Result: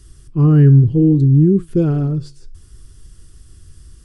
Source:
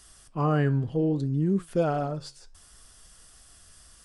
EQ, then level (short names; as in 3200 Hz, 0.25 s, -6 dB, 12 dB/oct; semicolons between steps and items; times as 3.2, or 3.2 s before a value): resonant low shelf 160 Hz +8 dB, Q 1.5; resonant low shelf 480 Hz +10 dB, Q 3; -1.0 dB